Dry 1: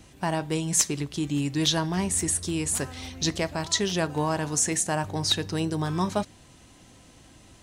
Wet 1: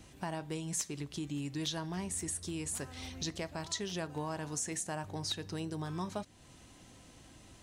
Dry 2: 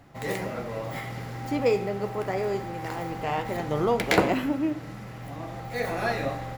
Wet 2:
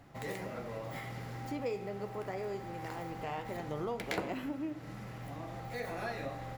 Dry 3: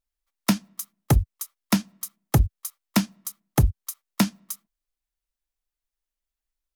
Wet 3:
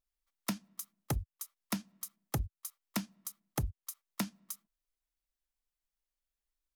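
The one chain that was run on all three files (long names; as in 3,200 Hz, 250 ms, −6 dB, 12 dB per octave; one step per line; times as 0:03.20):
downward compressor 2 to 1, threshold −37 dBFS
level −4 dB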